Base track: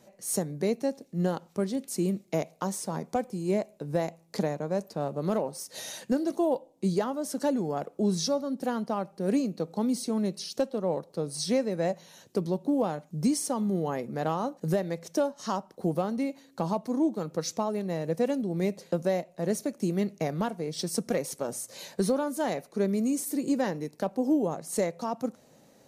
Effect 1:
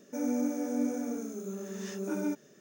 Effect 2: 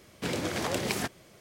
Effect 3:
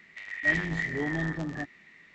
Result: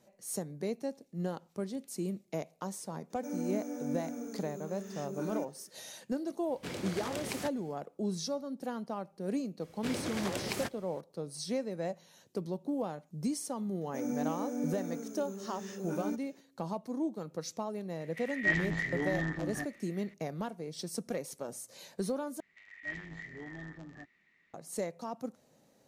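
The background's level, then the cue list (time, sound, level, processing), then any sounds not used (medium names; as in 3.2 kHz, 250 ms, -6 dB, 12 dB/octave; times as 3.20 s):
base track -8 dB
3.10 s: add 1 -6 dB
6.41 s: add 2 -8.5 dB, fades 0.10 s
9.61 s: add 2 -6 dB
13.81 s: add 1 -4.5 dB
18.00 s: add 3 -3.5 dB
22.40 s: replace with 3 -15 dB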